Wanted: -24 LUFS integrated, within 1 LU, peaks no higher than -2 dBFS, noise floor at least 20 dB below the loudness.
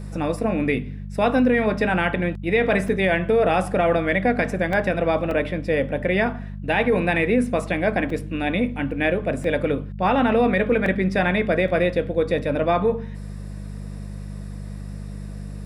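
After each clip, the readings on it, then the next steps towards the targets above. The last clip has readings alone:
dropouts 8; longest dropout 2.4 ms; hum 50 Hz; highest harmonic 200 Hz; hum level -31 dBFS; loudness -21.5 LUFS; peak level -8.0 dBFS; loudness target -24.0 LUFS
-> interpolate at 2.88/4.73/5.31/8.10/8.91/9.44/10.86/11.68 s, 2.4 ms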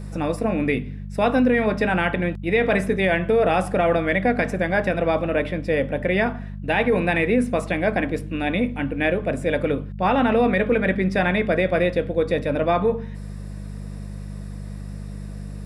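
dropouts 0; hum 50 Hz; highest harmonic 200 Hz; hum level -31 dBFS
-> de-hum 50 Hz, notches 4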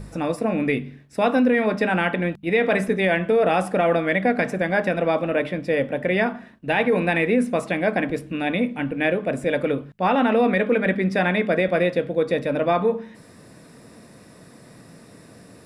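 hum not found; loudness -22.0 LUFS; peak level -8.5 dBFS; loudness target -24.0 LUFS
-> trim -2 dB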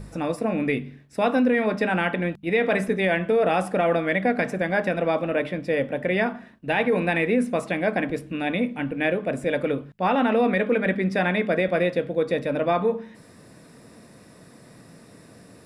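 loudness -24.0 LUFS; peak level -10.5 dBFS; noise floor -50 dBFS

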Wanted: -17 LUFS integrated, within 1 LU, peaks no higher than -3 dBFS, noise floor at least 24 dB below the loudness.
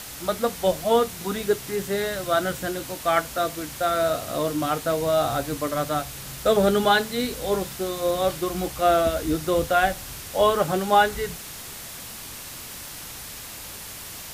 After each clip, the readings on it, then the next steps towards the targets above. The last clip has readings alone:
noise floor -38 dBFS; noise floor target -48 dBFS; loudness -24.0 LUFS; peak level -6.5 dBFS; loudness target -17.0 LUFS
-> noise reduction 10 dB, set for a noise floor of -38 dBFS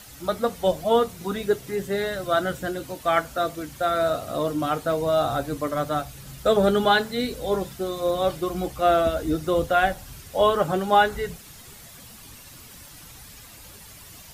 noise floor -45 dBFS; noise floor target -48 dBFS
-> noise reduction 6 dB, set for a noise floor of -45 dBFS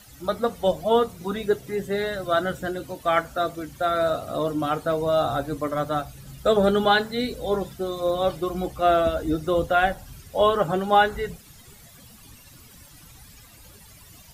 noise floor -49 dBFS; loudness -24.0 LUFS; peak level -6.5 dBFS; loudness target -17.0 LUFS
-> trim +7 dB; peak limiter -3 dBFS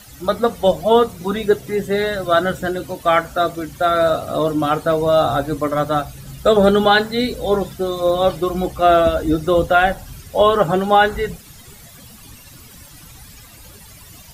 loudness -17.5 LUFS; peak level -3.0 dBFS; noise floor -42 dBFS

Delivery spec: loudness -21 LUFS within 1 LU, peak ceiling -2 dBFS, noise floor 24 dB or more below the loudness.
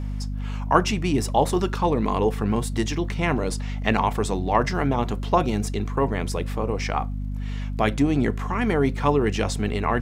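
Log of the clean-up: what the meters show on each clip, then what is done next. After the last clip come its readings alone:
tick rate 33 per s; hum 50 Hz; highest harmonic 250 Hz; hum level -26 dBFS; loudness -24.0 LUFS; peak level -2.5 dBFS; loudness target -21.0 LUFS
-> de-click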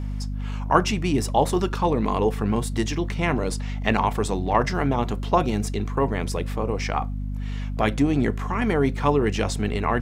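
tick rate 0.50 per s; hum 50 Hz; highest harmonic 250 Hz; hum level -26 dBFS
-> de-hum 50 Hz, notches 5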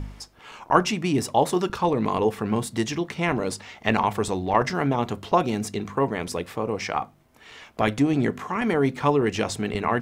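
hum not found; loudness -24.5 LUFS; peak level -2.0 dBFS; loudness target -21.0 LUFS
-> trim +3.5 dB; peak limiter -2 dBFS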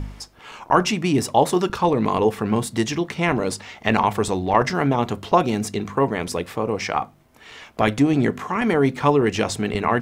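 loudness -21.5 LUFS; peak level -2.0 dBFS; noise floor -50 dBFS

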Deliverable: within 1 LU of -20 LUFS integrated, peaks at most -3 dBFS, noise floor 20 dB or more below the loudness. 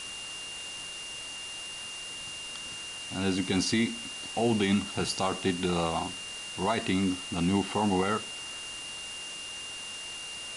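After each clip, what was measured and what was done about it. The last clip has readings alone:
steady tone 2.8 kHz; tone level -39 dBFS; noise floor -40 dBFS; noise floor target -52 dBFS; loudness -31.5 LUFS; peak level -14.5 dBFS; loudness target -20.0 LUFS
-> band-stop 2.8 kHz, Q 30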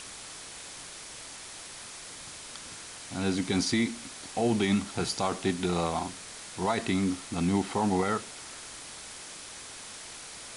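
steady tone not found; noise floor -44 dBFS; noise floor target -52 dBFS
-> noise reduction 8 dB, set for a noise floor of -44 dBFS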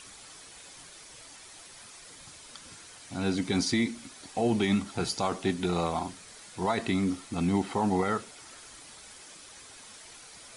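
noise floor -50 dBFS; loudness -29.5 LUFS; peak level -15.0 dBFS; loudness target -20.0 LUFS
-> trim +9.5 dB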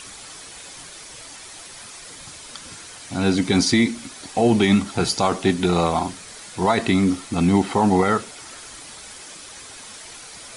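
loudness -20.0 LUFS; peak level -5.5 dBFS; noise floor -40 dBFS

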